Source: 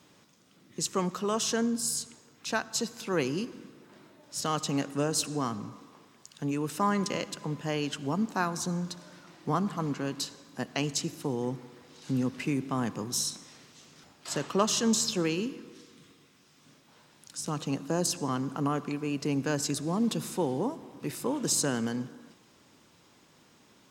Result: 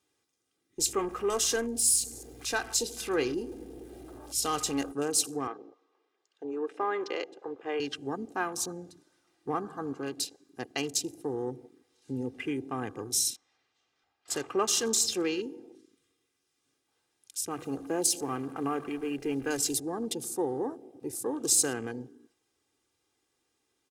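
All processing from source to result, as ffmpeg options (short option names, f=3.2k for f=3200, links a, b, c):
-filter_complex "[0:a]asettb=1/sr,asplit=3[a][b][c];[a]atrim=end=0.794[d];[b]atrim=start=0.79:end=4.92,asetpts=PTS-STARTPTS,afade=t=in:d=0.004:c=qsin,afade=t=out:st=4.126:d=0.004:c=qsin,aeval=exprs='val(0)+0.5*0.0112*sgn(val(0))':c=same,aeval=exprs='val(0)+0.00282*(sin(2*PI*60*n/s)+sin(2*PI*2*60*n/s)/2+sin(2*PI*3*60*n/s)/3+sin(2*PI*4*60*n/s)/4+sin(2*PI*5*60*n/s)/5)':c=same,asplit=2[e][f];[f]adelay=25,volume=-13dB[g];[e][g]amix=inputs=2:normalize=0,atrim=end_sample=182133[h];[c]atrim=start=4.916[i];[d][h]acrossfade=d=0.004:c1=hsin:c2=qsin[j];[j][i]acrossfade=d=0.004:c1=qsin:c2=hsin,asettb=1/sr,asplit=3[k][l][m];[k]atrim=end=5.474[n];[l]atrim=start=5.47:end=7.8,asetpts=PTS-STARTPTS,afade=t=in:d=0.004:c=qsin,afade=t=out:st=2.326:d=0.004:c=qsin,highpass=120,lowpass=3.6k,lowshelf=f=270:t=q:w=1.5:g=-12[o];[m]atrim=start=7.796[p];[n][o]acrossfade=d=0.004:c1=hsin:c2=qsin[q];[q][p]acrossfade=d=0.004:c1=qsin:c2=hsin,asettb=1/sr,asplit=3[r][s][t];[r]atrim=end=13.364[u];[s]atrim=start=13.36:end=14.28,asetpts=PTS-STARTPTS,afade=t=in:d=0.004:c=qsin,afade=t=out:st=0.916:d=0.004:c=qsin,lowpass=3.5k,lowshelf=f=530:t=q:w=1.5:g=-6[v];[t]atrim=start=14.276[w];[u][v]acrossfade=d=0.004:c1=hsin:c2=qsin[x];[x][w]acrossfade=d=0.004:c1=qsin:c2=hsin,asettb=1/sr,asplit=3[y][z][aa];[y]atrim=end=17.504[ab];[z]atrim=start=17.5:end=19.8,asetpts=PTS-STARTPTS,afade=t=in:d=0.004:c=qsin,afade=t=out:st=2.296:d=0.004:c=qsin,aeval=exprs='val(0)+0.5*0.0075*sgn(val(0))':c=same,bandreject=f=50:t=h:w=6,bandreject=f=100:t=h:w=6,bandreject=f=150:t=h:w=6,bandreject=f=200:t=h:w=6,acrusher=bits=6:mix=0:aa=0.5[ac];[aa]atrim=start=19.796[ad];[ab][ac]acrossfade=d=0.004:c1=hsin:c2=qsin[ae];[ae][ad]acrossfade=d=0.004:c1=qsin:c2=hsin,equalizer=f=160:t=o:w=0.67:g=-8,equalizer=f=1k:t=o:w=0.67:g=-3,equalizer=f=10k:t=o:w=0.67:g=10,afwtdn=0.00794,aecho=1:1:2.5:0.58,volume=-2dB"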